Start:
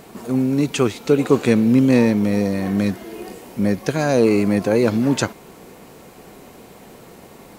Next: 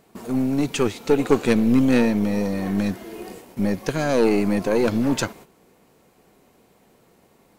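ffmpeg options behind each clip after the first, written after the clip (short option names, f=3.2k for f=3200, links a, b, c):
-af "agate=range=-12dB:threshold=-38dB:ratio=16:detection=peak,aeval=exprs='0.794*(cos(1*acos(clip(val(0)/0.794,-1,1)))-cos(1*PI/2))+0.141*(cos(2*acos(clip(val(0)/0.794,-1,1)))-cos(2*PI/2))+0.158*(cos(4*acos(clip(val(0)/0.794,-1,1)))-cos(4*PI/2))':c=same,volume=-2.5dB"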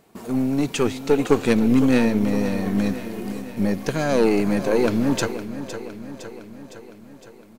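-af "aecho=1:1:510|1020|1530|2040|2550|3060|3570:0.251|0.151|0.0904|0.0543|0.0326|0.0195|0.0117"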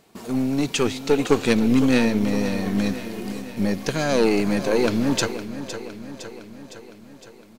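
-af "equalizer=f=4.4k:w=0.66:g=6,volume=-1dB"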